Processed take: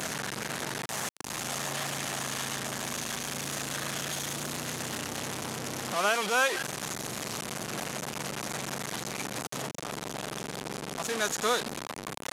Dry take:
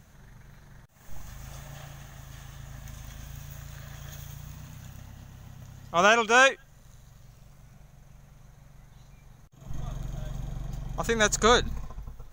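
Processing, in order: one-bit delta coder 64 kbps, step -17.5 dBFS; high-pass 240 Hz 12 dB/octave; trim -7 dB

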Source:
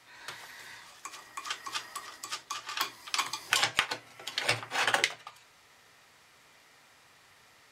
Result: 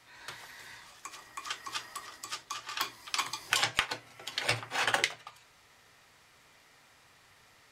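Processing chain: bass shelf 100 Hz +8 dB; trim -1.5 dB

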